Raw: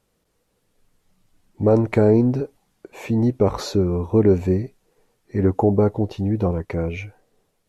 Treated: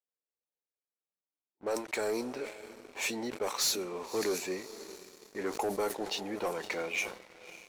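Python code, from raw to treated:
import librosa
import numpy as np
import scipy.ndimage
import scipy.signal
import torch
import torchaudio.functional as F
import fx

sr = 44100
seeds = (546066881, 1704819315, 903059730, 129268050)

y = scipy.signal.sosfilt(scipy.signal.butter(2, 260.0, 'highpass', fs=sr, output='sos'), x)
y = np.diff(y, prepend=0.0)
y = fx.rider(y, sr, range_db=4, speed_s=0.5)
y = fx.env_lowpass(y, sr, base_hz=620.0, full_db=-37.5)
y = fx.high_shelf(y, sr, hz=5600.0, db=6.0)
y = fx.echo_diffused(y, sr, ms=589, feedback_pct=44, wet_db=-15.5)
y = fx.leveller(y, sr, passes=3)
y = fx.sustainer(y, sr, db_per_s=120.0)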